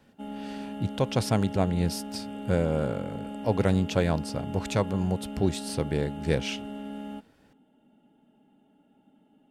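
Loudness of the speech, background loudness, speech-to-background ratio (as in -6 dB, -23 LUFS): -28.5 LUFS, -38.0 LUFS, 9.5 dB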